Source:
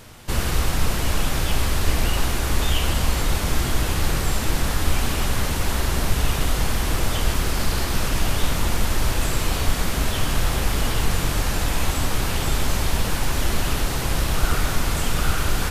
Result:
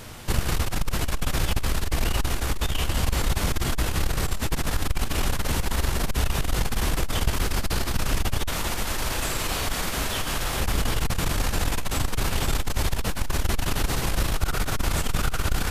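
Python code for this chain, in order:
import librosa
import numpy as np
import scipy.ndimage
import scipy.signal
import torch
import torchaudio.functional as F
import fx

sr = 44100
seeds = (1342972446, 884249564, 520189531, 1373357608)

y = fx.rider(x, sr, range_db=10, speed_s=0.5)
y = fx.low_shelf(y, sr, hz=290.0, db=-8.0, at=(8.48, 10.6))
y = fx.transformer_sat(y, sr, knee_hz=94.0)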